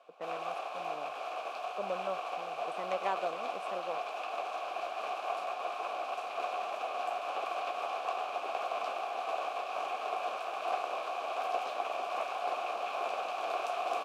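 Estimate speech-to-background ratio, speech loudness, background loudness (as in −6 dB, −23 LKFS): −5.0 dB, −41.5 LKFS, −36.5 LKFS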